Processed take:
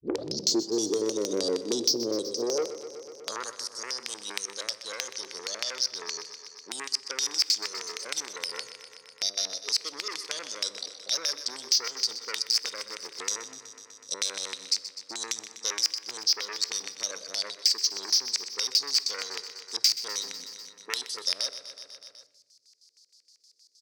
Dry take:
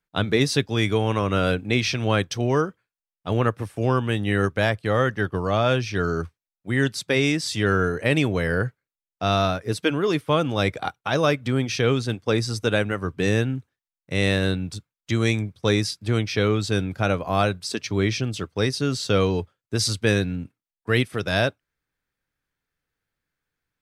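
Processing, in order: tape start-up on the opening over 0.71 s; Chebyshev band-stop 570–4600 Hz, order 4; treble shelf 2.6 kHz +6 dB; de-hum 99.48 Hz, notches 30; in parallel at +1 dB: peak limiter -16.5 dBFS, peak gain reduction 7.5 dB; on the sum: LFO low-pass square 6.4 Hz 410–5400 Hz; saturation -11 dBFS, distortion -14 dB; high-pass sweep 350 Hz -> 2.2 kHz, 2.17–3.85 s; feedback delay 124 ms, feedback 59%, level -14.5 dB; on a send at -17 dB: reverberation RT60 0.95 s, pre-delay 4 ms; on the sum: three bands compressed up and down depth 70%; trim -1.5 dB

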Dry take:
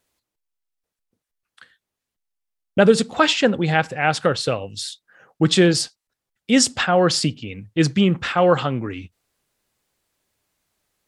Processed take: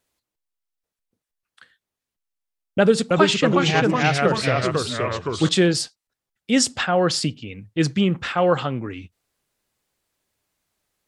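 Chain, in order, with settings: 2.79–5.49 s: ever faster or slower copies 316 ms, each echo -2 st, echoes 3; trim -2.5 dB

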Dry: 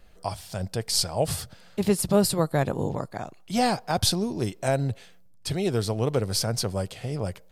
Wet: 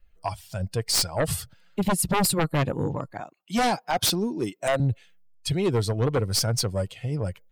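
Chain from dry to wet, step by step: expander on every frequency bin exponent 1.5; 3.20–4.80 s: high-pass 210 Hz 12 dB/octave; sine folder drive 12 dB, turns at -9.5 dBFS; trim -8.5 dB

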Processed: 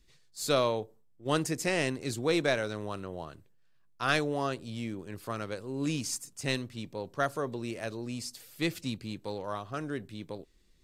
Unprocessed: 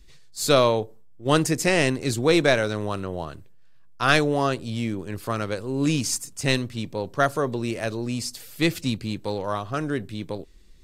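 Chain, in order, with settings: bass shelf 63 Hz -8 dB; trim -8.5 dB

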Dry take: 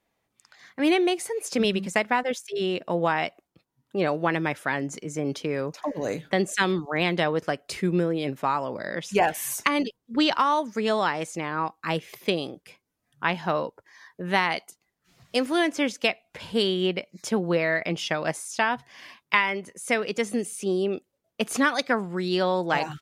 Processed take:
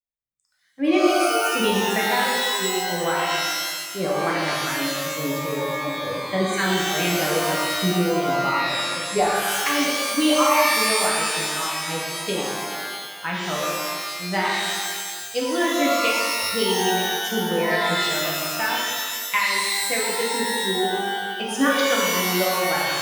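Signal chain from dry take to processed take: expander on every frequency bin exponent 1.5; pitch-shifted reverb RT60 1.7 s, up +12 st, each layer -2 dB, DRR -4 dB; trim -1.5 dB

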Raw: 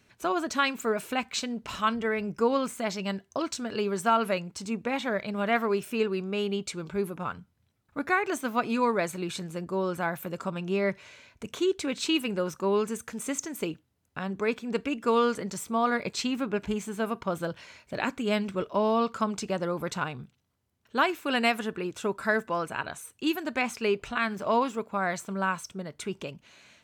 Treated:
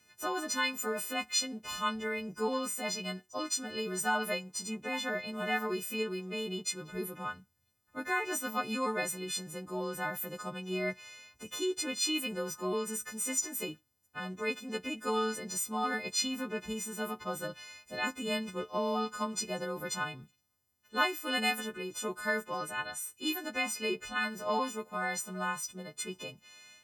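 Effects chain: partials quantised in pitch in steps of 3 st; trim -7 dB

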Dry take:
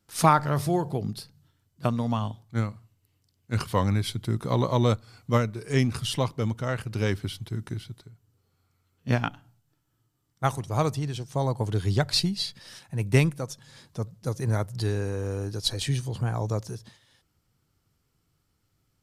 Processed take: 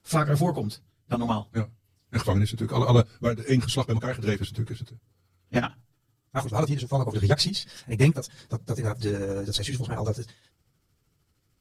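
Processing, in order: peaking EQ 190 Hz -2 dB 1 oct; rotary cabinet horn 0.8 Hz, later 8 Hz, at 5.38 s; plain phase-vocoder stretch 0.61×; trim +7.5 dB

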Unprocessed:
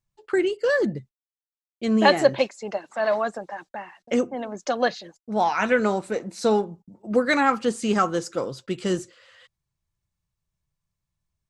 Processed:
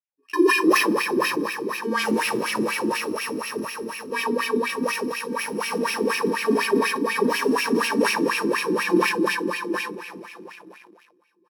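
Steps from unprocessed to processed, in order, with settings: bit-reversed sample order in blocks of 64 samples; on a send: feedback delay 301 ms, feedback 51%, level -11.5 dB; on the sum: plate-style reverb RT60 4.7 s, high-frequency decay 1×, DRR -6 dB; waveshaping leveller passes 3; dynamic bell 2.6 kHz, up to -4 dB, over -34 dBFS, Q 4.1; wah-wah 4.1 Hz 290–2600 Hz, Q 5; bass shelf 180 Hz -7.5 dB; decay stretcher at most 53 dB/s; trim +2.5 dB

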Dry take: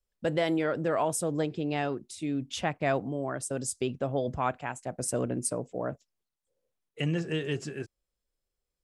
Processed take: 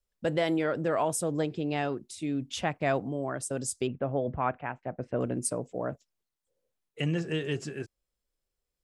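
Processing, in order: 3.87–5.21 s: low-pass 2.5 kHz 24 dB/octave

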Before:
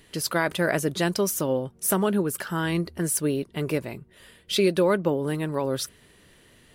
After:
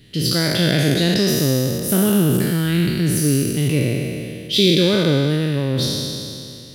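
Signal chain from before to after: spectral sustain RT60 2.60 s; ten-band graphic EQ 125 Hz +12 dB, 250 Hz +5 dB, 1 kHz -12 dB, 4 kHz +8 dB, 8 kHz -7 dB

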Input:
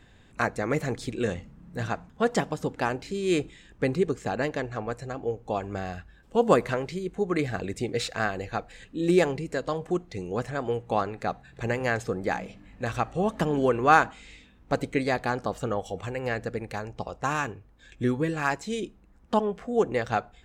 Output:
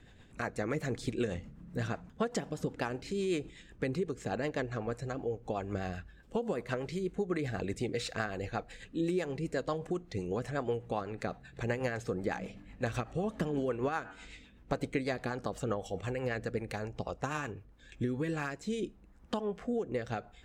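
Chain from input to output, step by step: 13.97–14.78 s: de-hum 95.73 Hz, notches 35; compression 12:1, threshold -27 dBFS, peak gain reduction 15.5 dB; rotary cabinet horn 8 Hz, later 0.8 Hz, at 17.46 s

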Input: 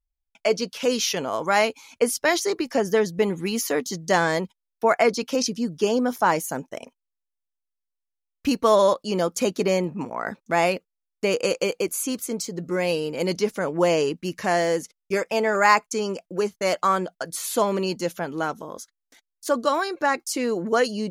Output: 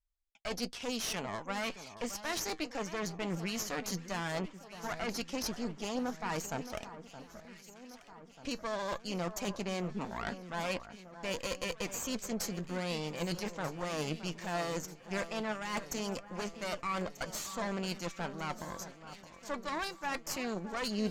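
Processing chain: steep low-pass 8.3 kHz 96 dB/octave; peaking EQ 380 Hz -10 dB 0.84 oct; reverse; compression 10:1, threshold -30 dBFS, peak gain reduction 17.5 dB; reverse; saturation -20.5 dBFS, distortion -27 dB; Chebyshev shaper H 4 -11 dB, 8 -34 dB, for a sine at -21.5 dBFS; flange 0.18 Hz, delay 3.2 ms, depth 3.5 ms, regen +70%; on a send: echo whose repeats swap between lows and highs 619 ms, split 1.6 kHz, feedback 74%, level -12 dB

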